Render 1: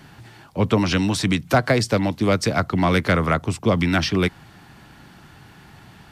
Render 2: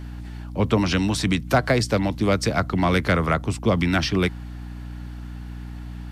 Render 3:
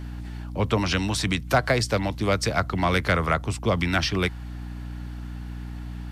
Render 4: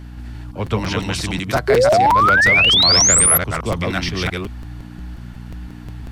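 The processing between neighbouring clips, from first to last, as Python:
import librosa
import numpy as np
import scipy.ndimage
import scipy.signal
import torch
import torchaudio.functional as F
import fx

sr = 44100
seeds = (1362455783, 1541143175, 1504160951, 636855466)

y1 = fx.add_hum(x, sr, base_hz=60, snr_db=11)
y1 = F.gain(torch.from_numpy(y1), -1.5).numpy()
y2 = fx.dynamic_eq(y1, sr, hz=240.0, q=0.77, threshold_db=-34.0, ratio=4.0, max_db=-6)
y3 = fx.reverse_delay(y2, sr, ms=172, wet_db=-1.5)
y3 = fx.spec_paint(y3, sr, seeds[0], shape='rise', start_s=1.68, length_s=1.7, low_hz=390.0, high_hz=12000.0, level_db=-13.0)
y3 = fx.buffer_crackle(y3, sr, first_s=0.66, period_s=0.18, block=256, kind='repeat')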